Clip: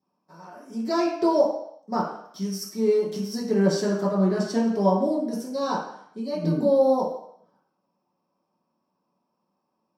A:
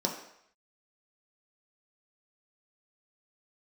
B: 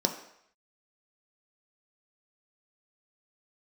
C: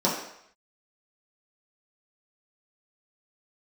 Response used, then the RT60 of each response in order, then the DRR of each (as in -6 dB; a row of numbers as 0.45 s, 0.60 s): C; 0.70 s, 0.70 s, 0.70 s; -0.5 dB, 3.5 dB, -7.0 dB